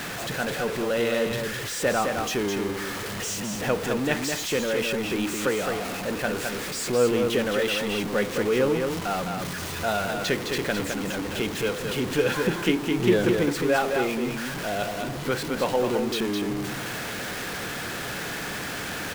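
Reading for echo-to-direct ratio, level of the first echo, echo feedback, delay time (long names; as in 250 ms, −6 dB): −5.0 dB, −5.0 dB, repeats not evenly spaced, 211 ms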